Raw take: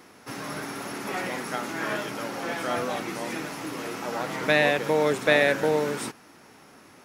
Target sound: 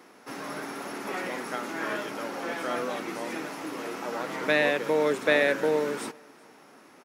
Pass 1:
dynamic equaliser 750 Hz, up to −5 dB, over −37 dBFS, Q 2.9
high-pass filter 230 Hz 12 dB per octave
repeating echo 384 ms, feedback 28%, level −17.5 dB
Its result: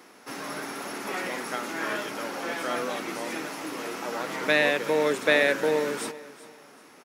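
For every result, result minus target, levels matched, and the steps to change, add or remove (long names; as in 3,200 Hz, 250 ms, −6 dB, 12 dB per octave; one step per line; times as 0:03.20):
echo-to-direct +10 dB; 4,000 Hz band +2.5 dB
change: repeating echo 384 ms, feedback 28%, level −27.5 dB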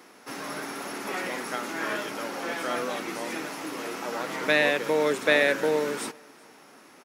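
4,000 Hz band +2.5 dB
add after high-pass filter: high-shelf EQ 2,100 Hz −5 dB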